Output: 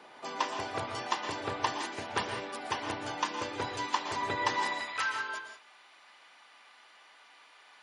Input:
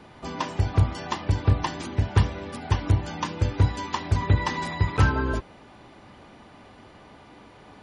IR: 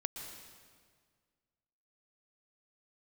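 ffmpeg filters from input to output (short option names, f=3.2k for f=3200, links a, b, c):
-filter_complex "[0:a]asetnsamples=n=441:p=0,asendcmd='4.8 highpass f 1400',highpass=480[a];[1:a]atrim=start_sample=2205,afade=t=out:st=0.25:d=0.01,atrim=end_sample=11466[b];[a][b]afir=irnorm=-1:irlink=0"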